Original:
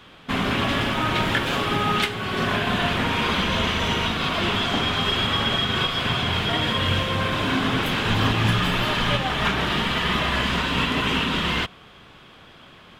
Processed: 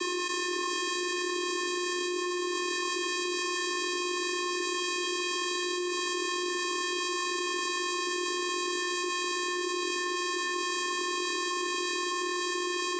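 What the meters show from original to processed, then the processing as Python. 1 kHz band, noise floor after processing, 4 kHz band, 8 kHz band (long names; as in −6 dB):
−7.5 dB, −32 dBFS, −8.5 dB, +6.5 dB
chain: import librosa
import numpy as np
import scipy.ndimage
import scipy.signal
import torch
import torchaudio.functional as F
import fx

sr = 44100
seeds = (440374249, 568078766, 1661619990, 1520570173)

p1 = fx.envelope_flatten(x, sr, power=0.1)
p2 = fx.resonator_bank(p1, sr, root=40, chord='fifth', decay_s=0.35)
p3 = p2 + fx.echo_single(p2, sr, ms=605, db=-11.0, dry=0)
p4 = fx.vocoder(p3, sr, bands=16, carrier='square', carrier_hz=357.0)
y = fx.env_flatten(p4, sr, amount_pct=100)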